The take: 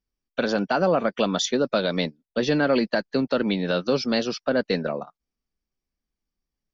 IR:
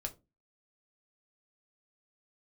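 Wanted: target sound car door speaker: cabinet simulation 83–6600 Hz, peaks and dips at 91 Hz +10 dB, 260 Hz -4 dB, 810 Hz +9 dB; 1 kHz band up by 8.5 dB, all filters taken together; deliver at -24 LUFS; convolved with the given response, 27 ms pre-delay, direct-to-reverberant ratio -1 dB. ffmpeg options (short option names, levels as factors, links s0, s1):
-filter_complex "[0:a]equalizer=f=1000:t=o:g=5.5,asplit=2[s0][s1];[1:a]atrim=start_sample=2205,adelay=27[s2];[s1][s2]afir=irnorm=-1:irlink=0,volume=1.26[s3];[s0][s3]amix=inputs=2:normalize=0,highpass=83,equalizer=f=91:t=q:w=4:g=10,equalizer=f=260:t=q:w=4:g=-4,equalizer=f=810:t=q:w=4:g=9,lowpass=f=6600:w=0.5412,lowpass=f=6600:w=1.3066,volume=0.501"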